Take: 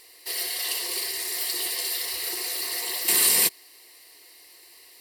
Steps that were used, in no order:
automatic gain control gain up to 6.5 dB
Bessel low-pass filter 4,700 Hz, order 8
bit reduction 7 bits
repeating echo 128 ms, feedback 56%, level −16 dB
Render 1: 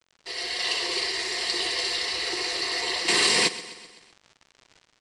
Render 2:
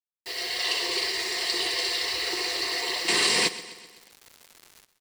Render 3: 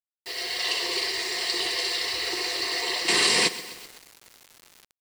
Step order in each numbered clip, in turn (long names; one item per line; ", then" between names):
bit reduction, then Bessel low-pass filter, then automatic gain control, then repeating echo
automatic gain control, then Bessel low-pass filter, then bit reduction, then repeating echo
Bessel low-pass filter, then automatic gain control, then repeating echo, then bit reduction